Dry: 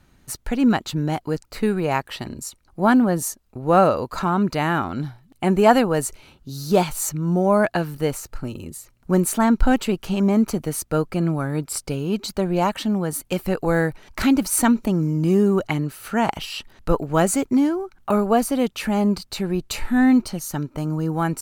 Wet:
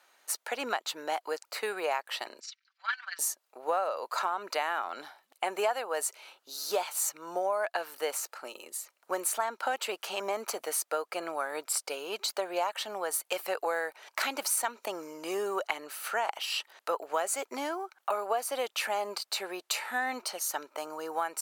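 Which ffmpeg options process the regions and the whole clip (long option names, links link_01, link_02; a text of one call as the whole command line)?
ffmpeg -i in.wav -filter_complex "[0:a]asettb=1/sr,asplit=3[link_01][link_02][link_03];[link_01]atrim=end=2.404[link_04];[link_02]atrim=start=2.4:end=3.19,asetpts=PTS-STARTPTS,afade=type=in:duration=0.004:curve=qsin,afade=type=out:start_time=0.786:duration=0.004:curve=qsin,asuperpass=centerf=2900:order=8:qfactor=0.72,aecho=1:1:5.2:0.93,atrim=end_sample=34839,tremolo=f=22:d=0.667[link_05];[link_03]atrim=start=3.186[link_06];[link_04][link_05]acrossfade=duration=0.004:curve1=hsin:curve2=qsin[link_07];[link_07][link_06]acrossfade=duration=0.004:curve1=qsin:curve2=hsin,highpass=frequency=550:width=0.5412,highpass=frequency=550:width=1.3066,acompressor=threshold=-27dB:ratio=6" out.wav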